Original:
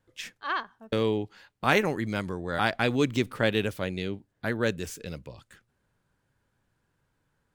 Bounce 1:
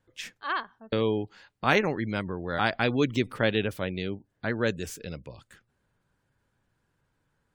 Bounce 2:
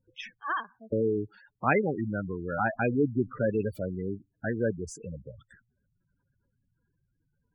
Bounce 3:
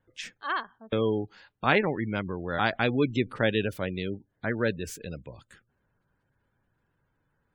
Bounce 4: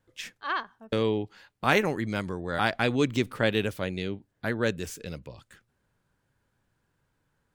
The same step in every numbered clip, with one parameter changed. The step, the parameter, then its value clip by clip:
spectral gate, under each frame's peak: -35, -10, -25, -55 dB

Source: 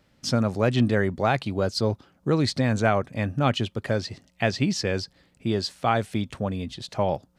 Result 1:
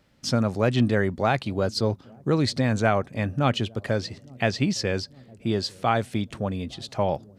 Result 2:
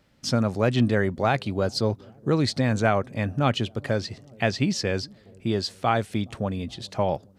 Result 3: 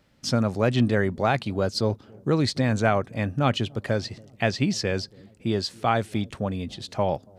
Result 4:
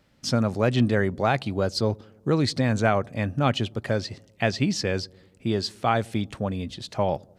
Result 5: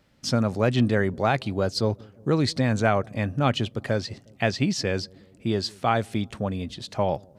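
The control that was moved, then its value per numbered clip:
dark delay, time: 860, 419, 281, 96, 180 ms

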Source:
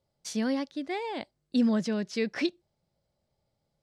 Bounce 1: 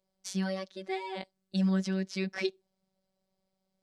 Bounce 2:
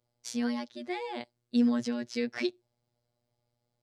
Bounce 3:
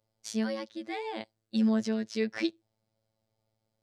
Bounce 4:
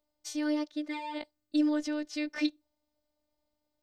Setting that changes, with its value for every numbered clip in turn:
robotiser, frequency: 190, 120, 110, 300 Hz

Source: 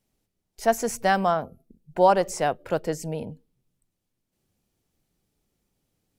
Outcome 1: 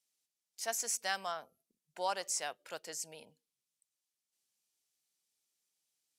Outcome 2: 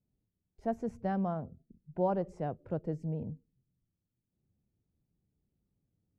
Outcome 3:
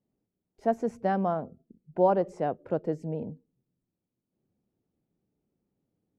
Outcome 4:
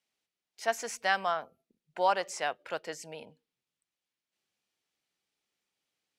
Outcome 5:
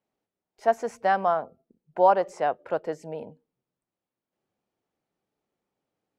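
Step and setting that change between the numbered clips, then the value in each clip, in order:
band-pass, frequency: 7000, 100, 260, 2700, 830 Hz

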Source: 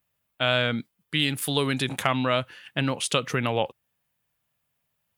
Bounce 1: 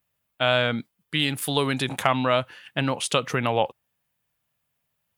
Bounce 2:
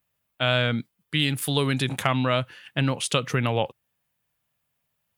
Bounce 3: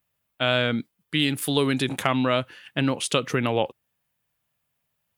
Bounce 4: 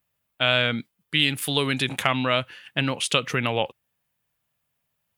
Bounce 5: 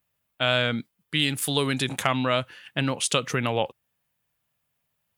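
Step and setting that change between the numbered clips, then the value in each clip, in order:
dynamic EQ, frequency: 820, 120, 320, 2600, 7100 Hz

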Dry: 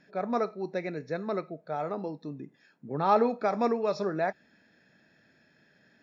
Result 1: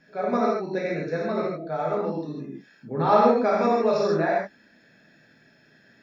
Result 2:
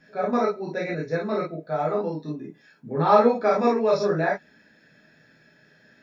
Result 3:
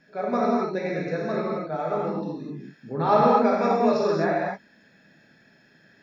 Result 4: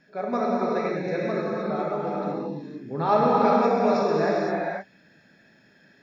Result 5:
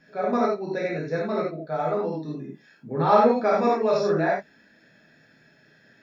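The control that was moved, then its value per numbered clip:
non-linear reverb, gate: 180, 80, 280, 540, 120 ms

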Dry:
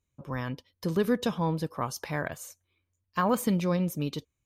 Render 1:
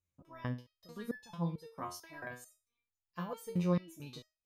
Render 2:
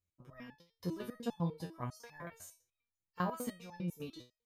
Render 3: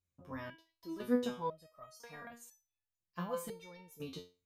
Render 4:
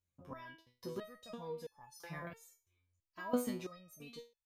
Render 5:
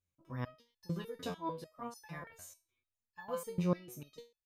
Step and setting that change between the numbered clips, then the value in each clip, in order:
stepped resonator, rate: 4.5, 10, 2, 3, 6.7 Hz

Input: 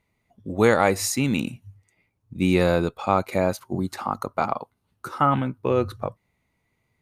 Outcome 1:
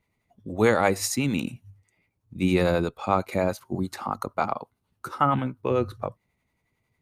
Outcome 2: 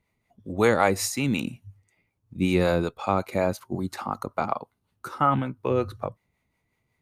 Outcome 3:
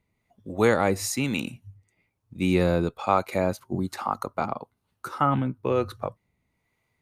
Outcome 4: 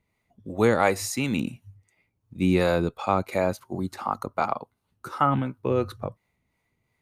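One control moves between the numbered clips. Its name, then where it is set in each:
harmonic tremolo, rate: 11, 5.4, 1.1, 2.8 Hz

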